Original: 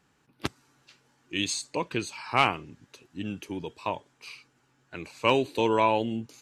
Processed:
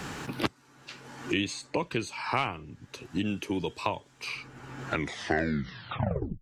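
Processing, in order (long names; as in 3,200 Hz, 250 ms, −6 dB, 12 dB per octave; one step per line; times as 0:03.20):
turntable brake at the end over 1.57 s
high-shelf EQ 11,000 Hz −5 dB
multiband upward and downward compressor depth 100%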